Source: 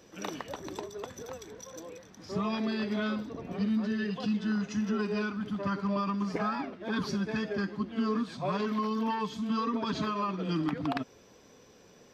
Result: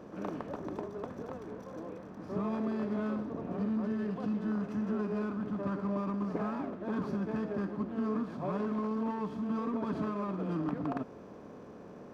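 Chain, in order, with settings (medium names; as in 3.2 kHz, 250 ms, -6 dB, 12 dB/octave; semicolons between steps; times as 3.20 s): spectral levelling over time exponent 0.6; FFT filter 580 Hz 0 dB, 2.4 kHz -12 dB, 3.4 kHz -18 dB; sliding maximum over 3 samples; trim -5 dB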